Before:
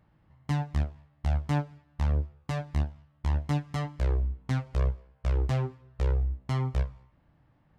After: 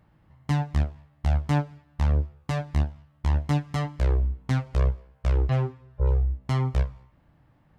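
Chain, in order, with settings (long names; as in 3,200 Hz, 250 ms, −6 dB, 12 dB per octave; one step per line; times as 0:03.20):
0:05.49–0:06.45: harmonic-percussive split with one part muted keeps harmonic
level +4 dB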